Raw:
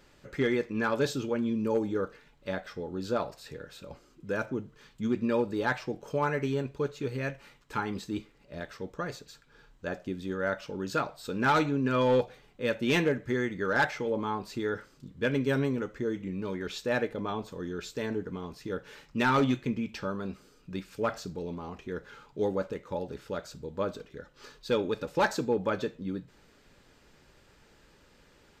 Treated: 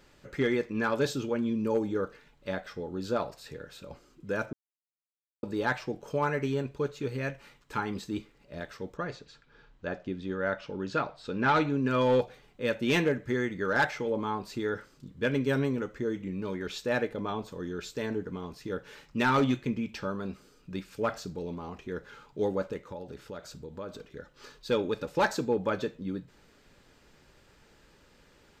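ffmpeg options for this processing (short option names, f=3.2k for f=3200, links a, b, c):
-filter_complex "[0:a]asettb=1/sr,asplit=3[a][b][c];[a]atrim=end=8.974[d];[b]atrim=start=8.97:end=11.7,asetpts=PTS-STARTPTS,afade=t=in:d=0.004:c=qsin,afade=t=out:st=2.726:d=0.004:c=qsin,lowpass=4.4k[e];[c]atrim=start=11.696[f];[d][e]acrossfade=d=0.004:c1=hsin:c2=qsin[g];[g][f]acrossfade=d=0.004:c1=qsin:c2=hsin,asettb=1/sr,asplit=3[h][i][j];[h]atrim=end=22.914[k];[i]atrim=start=22.91:end=24.06,asetpts=PTS-STARTPTS,afade=t=in:d=0.004:c=qsin,afade=t=out:st=1.146:d=0.004:c=qsin,acompressor=threshold=-39dB:ratio=2.5:attack=3.2:release=140:knee=1:detection=peak[l];[j]atrim=start=24.056[m];[k][l]acrossfade=d=0.004:c1=hsin:c2=qsin[n];[n][m]acrossfade=d=0.004:c1=qsin:c2=hsin,asplit=3[o][p][q];[o]atrim=end=4.53,asetpts=PTS-STARTPTS,afade=t=out:st=4.526:d=0.004:c=hsin[r];[p]atrim=start=4.53:end=5.43,asetpts=PTS-STARTPTS,volume=0[s];[q]atrim=start=5.43,asetpts=PTS-STARTPTS,afade=t=in:d=0.004:c=hsin[t];[r][s][t]concat=n=3:v=0:a=1"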